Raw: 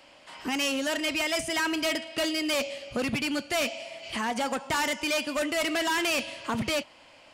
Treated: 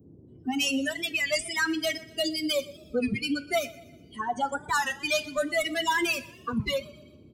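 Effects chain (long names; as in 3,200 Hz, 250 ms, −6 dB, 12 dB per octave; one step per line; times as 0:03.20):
spectral dynamics exaggerated over time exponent 3
noise in a band 68–370 Hz −59 dBFS
on a send: repeating echo 122 ms, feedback 46%, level −21 dB
on the sum: coupled-rooms reverb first 0.28 s, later 1.5 s, from −16 dB, DRR 12.5 dB
wow of a warped record 33 1/3 rpm, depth 160 cents
level +6.5 dB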